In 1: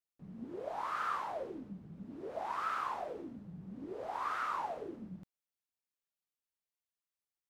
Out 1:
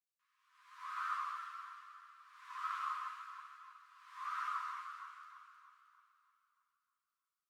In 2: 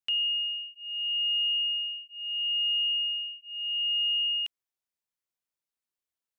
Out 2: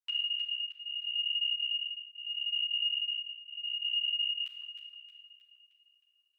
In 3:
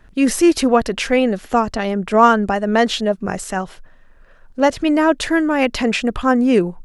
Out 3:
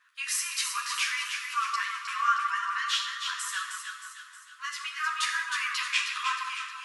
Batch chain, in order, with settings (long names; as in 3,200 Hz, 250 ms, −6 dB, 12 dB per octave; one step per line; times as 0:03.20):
brickwall limiter −9.5 dBFS
linear-phase brick-wall high-pass 980 Hz
on a send: delay that swaps between a low-pass and a high-pass 156 ms, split 1,300 Hz, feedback 70%, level −3 dB
on the sum: four-comb reverb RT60 0.84 s, combs from 25 ms, DRR 4.5 dB
string-ensemble chorus
level −2.5 dB